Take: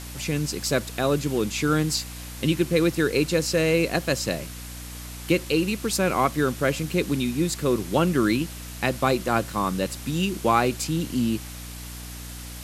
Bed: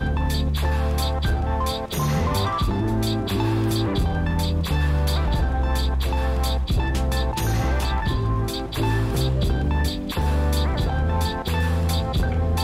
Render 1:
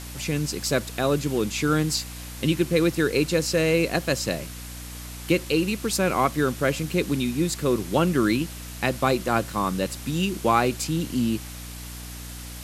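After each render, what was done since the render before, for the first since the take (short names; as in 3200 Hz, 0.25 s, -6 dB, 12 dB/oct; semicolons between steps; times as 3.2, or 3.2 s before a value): nothing audible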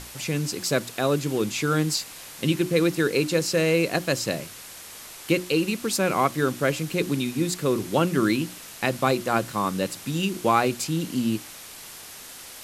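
notches 60/120/180/240/300/360 Hz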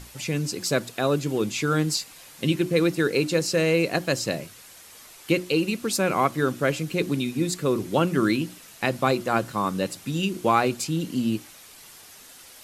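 denoiser 7 dB, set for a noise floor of -42 dBFS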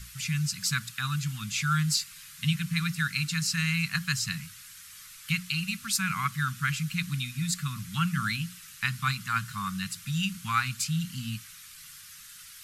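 elliptic band-stop 170–1300 Hz, stop band 70 dB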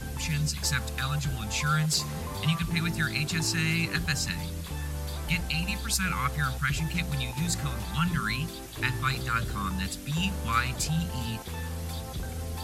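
add bed -13.5 dB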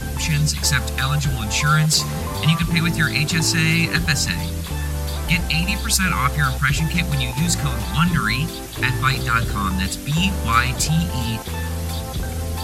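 gain +9.5 dB; limiter -3 dBFS, peak gain reduction 2.5 dB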